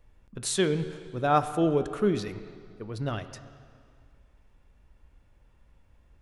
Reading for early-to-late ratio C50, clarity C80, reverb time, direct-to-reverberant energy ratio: 12.0 dB, 12.5 dB, 2.1 s, 10.5 dB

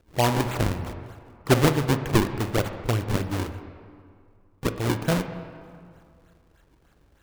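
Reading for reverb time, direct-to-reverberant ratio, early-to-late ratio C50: 2.2 s, 8.5 dB, 9.5 dB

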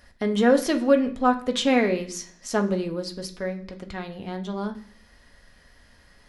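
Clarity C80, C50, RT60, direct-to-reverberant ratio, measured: 17.0 dB, 13.0 dB, 0.50 s, 3.5 dB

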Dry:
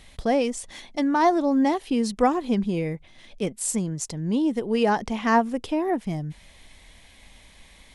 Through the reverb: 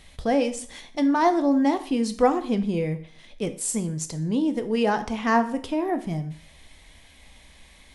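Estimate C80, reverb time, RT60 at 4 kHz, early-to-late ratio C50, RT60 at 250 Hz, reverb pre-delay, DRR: 17.0 dB, 0.50 s, 0.45 s, 14.0 dB, 0.50 s, 5 ms, 8.5 dB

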